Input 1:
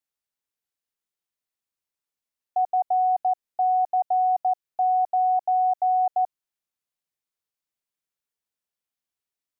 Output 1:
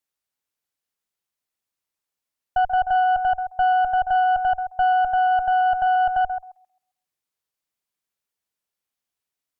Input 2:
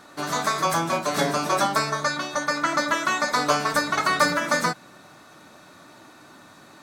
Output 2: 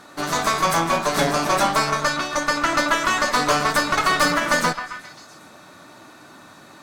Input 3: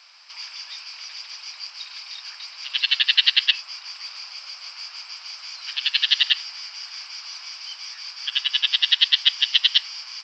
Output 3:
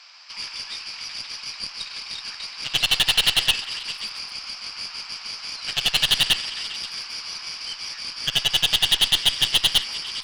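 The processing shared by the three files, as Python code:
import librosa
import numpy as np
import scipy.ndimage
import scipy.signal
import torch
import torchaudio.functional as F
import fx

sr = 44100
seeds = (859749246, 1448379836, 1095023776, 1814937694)

y = np.clip(x, -10.0 ** (-15.5 / 20.0), 10.0 ** (-15.5 / 20.0))
y = fx.echo_stepped(y, sr, ms=133, hz=870.0, octaves=0.7, feedback_pct=70, wet_db=-8.0)
y = fx.cheby_harmonics(y, sr, harmonics=(4, 8), levels_db=(-18, -32), full_scale_db=-11.5)
y = F.gain(torch.from_numpy(y), 3.0).numpy()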